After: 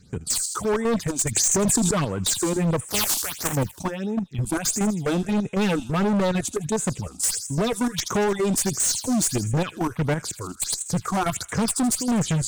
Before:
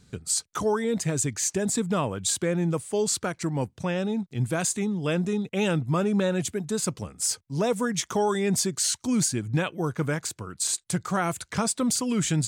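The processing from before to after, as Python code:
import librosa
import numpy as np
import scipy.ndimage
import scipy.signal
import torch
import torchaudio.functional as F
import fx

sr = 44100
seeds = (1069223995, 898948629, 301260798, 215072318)

p1 = fx.spec_flatten(x, sr, power=0.19, at=(2.88, 3.52), fade=0.02)
p2 = fx.level_steps(p1, sr, step_db=13)
p3 = fx.cheby_harmonics(p2, sr, harmonics=(4, 5), levels_db=(-20, -17), full_scale_db=-12.5)
p4 = p3 + fx.echo_wet_highpass(p3, sr, ms=80, feedback_pct=51, hz=2700.0, wet_db=-10, dry=0)
p5 = fx.phaser_stages(p4, sr, stages=6, low_hz=120.0, high_hz=4600.0, hz=1.5, feedback_pct=20)
p6 = np.clip(p5, -10.0 ** (-26.5 / 20.0), 10.0 ** (-26.5 / 20.0))
p7 = fx.env_flatten(p6, sr, amount_pct=100, at=(1.36, 1.91))
y = F.gain(torch.from_numpy(p7), 7.5).numpy()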